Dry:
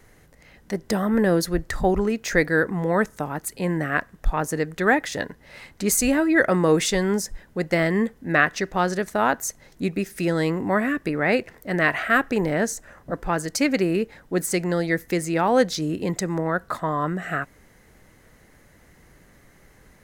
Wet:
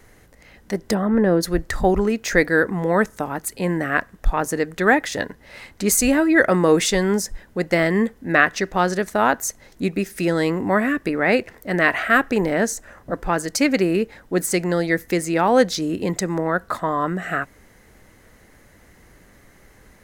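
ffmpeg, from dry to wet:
-filter_complex "[0:a]asplit=3[a][b][c];[a]afade=t=out:st=0.93:d=0.02[d];[b]lowpass=f=1.3k:p=1,afade=t=in:st=0.93:d=0.02,afade=t=out:st=1.42:d=0.02[e];[c]afade=t=in:st=1.42:d=0.02[f];[d][e][f]amix=inputs=3:normalize=0,equalizer=f=150:w=7.5:g=-8,volume=3dB"

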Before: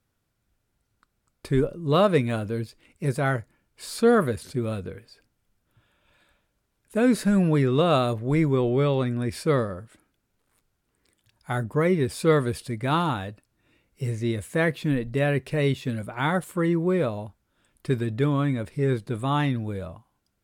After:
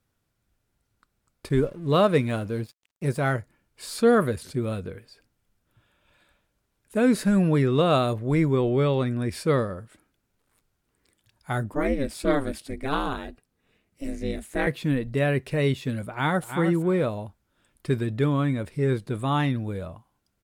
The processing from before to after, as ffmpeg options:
-filter_complex "[0:a]asettb=1/sr,asplit=3[a][b][c];[a]atrim=end=1.494[d];[b]atrim=start=1.49:end=3.33,asetpts=PTS-STARTPTS,afade=t=in:d=0.004:c=qsin,afade=t=out:st=1.836:d=0.004:c=qsin,aeval=exprs='sgn(val(0))*max(abs(val(0))-0.00282,0)':c=same[e];[c]atrim=start=3.326[f];[d][e]acrossfade=d=0.004:c1=hsin:c2=qsin[g];[g][f]acrossfade=d=0.004:c1=qsin:c2=hsin,asettb=1/sr,asplit=3[h][i][j];[h]atrim=end=11.744[k];[i]atrim=start=11.74:end=14.67,asetpts=PTS-STARTPTS,afade=t=in:d=0.004:c=qsin,afade=t=out:st=2.926:d=0.004:c=qsin,aeval=exprs='val(0)*sin(2*PI*140*n/s)':c=same[l];[j]atrim=start=14.666[m];[k][l]acrossfade=d=0.004:c1=hsin:c2=qsin[n];[n][m]acrossfade=d=0.004:c1=qsin:c2=hsin,asplit=2[o][p];[p]afade=t=in:st=16.1:d=0.01,afade=t=out:st=16.5:d=0.01,aecho=0:1:320|640:0.398107|0.0597161[q];[o][q]amix=inputs=2:normalize=0"

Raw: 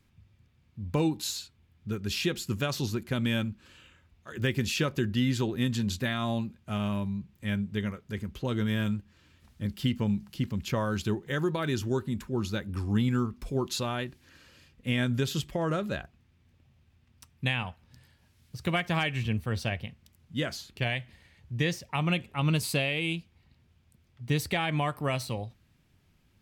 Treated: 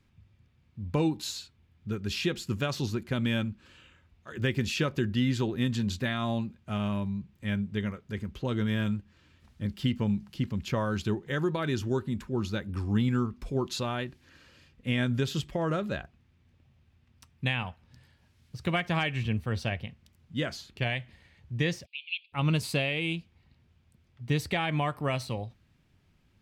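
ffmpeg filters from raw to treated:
-filter_complex "[0:a]asplit=3[a][b][c];[a]afade=t=out:st=21.85:d=0.02[d];[b]asuperpass=centerf=3400:order=12:qfactor=1.5,afade=t=in:st=21.85:d=0.02,afade=t=out:st=22.32:d=0.02[e];[c]afade=t=in:st=22.32:d=0.02[f];[d][e][f]amix=inputs=3:normalize=0,highshelf=f=8.7k:g=-10.5"

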